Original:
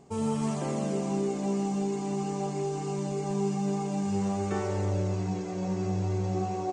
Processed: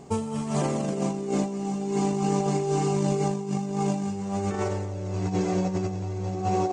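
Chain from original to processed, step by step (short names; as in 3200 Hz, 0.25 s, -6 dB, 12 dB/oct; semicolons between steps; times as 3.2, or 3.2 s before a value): negative-ratio compressor -32 dBFS, ratio -0.5; gain +6 dB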